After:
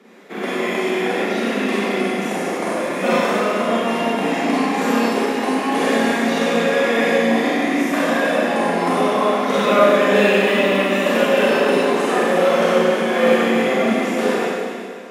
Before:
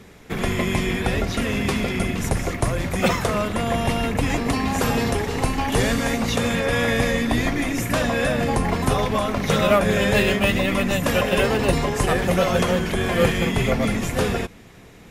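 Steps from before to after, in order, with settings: steep high-pass 220 Hz 36 dB/oct; high shelf 4000 Hz -11 dB; Schroeder reverb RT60 2.1 s, combs from 31 ms, DRR -8 dB; gain -2.5 dB

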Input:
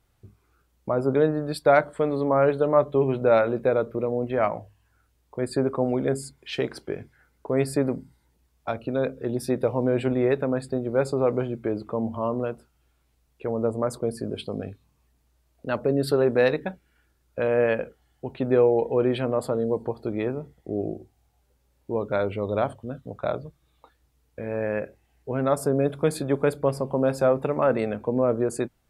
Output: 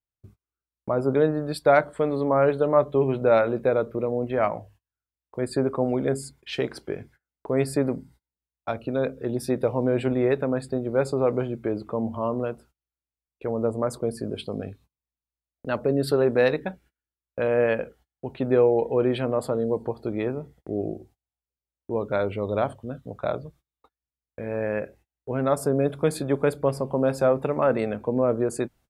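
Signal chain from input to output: gate -51 dBFS, range -30 dB

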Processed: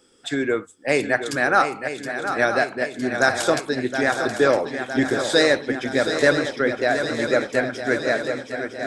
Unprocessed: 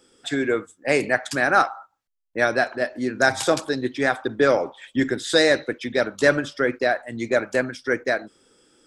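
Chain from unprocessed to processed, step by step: swung echo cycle 0.96 s, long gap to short 3:1, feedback 63%, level -9 dB

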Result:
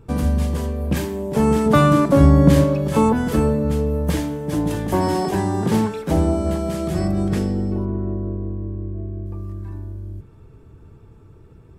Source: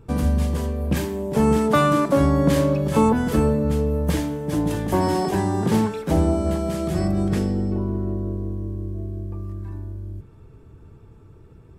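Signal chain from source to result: 1.66–2.64 low shelf 220 Hz +9.5 dB; 7.85–9.26 LPF 2800 Hz 24 dB/oct; gain +1 dB

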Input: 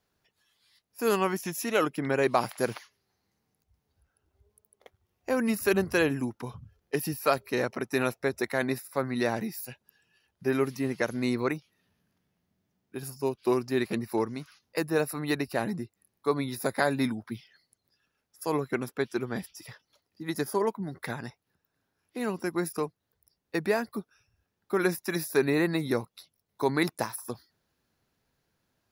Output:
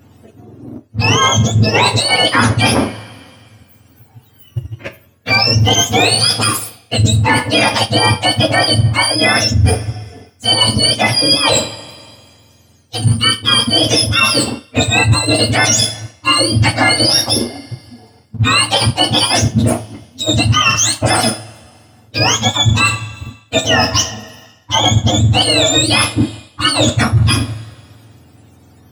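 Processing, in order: spectrum mirrored in octaves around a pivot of 1100 Hz; on a send: darkening echo 91 ms, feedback 63%, low-pass 2000 Hz, level -23 dB; on the sum: sample leveller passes 1; two-slope reverb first 0.33 s, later 2 s, from -26 dB, DRR 7 dB; reverse; compressor 12:1, threshold -38 dBFS, peak gain reduction 20 dB; reverse; maximiser +30.5 dB; gain -1 dB

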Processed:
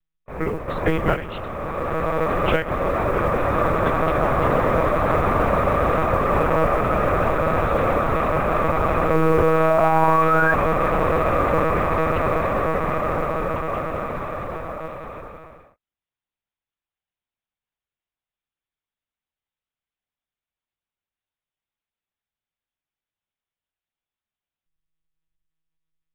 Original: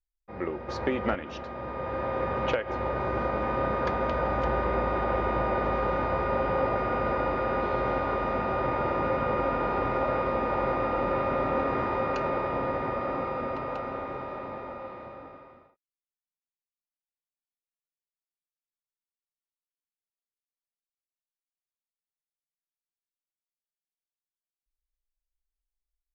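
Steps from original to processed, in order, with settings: painted sound rise, 9.14–10.54, 310–1700 Hz -27 dBFS; monotone LPC vocoder at 8 kHz 160 Hz; modulation noise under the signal 33 dB; gain +8 dB

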